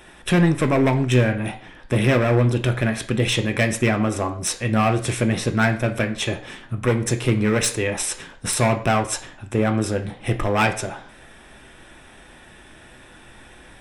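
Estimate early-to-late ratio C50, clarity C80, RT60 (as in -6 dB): 12.5 dB, 16.5 dB, 0.50 s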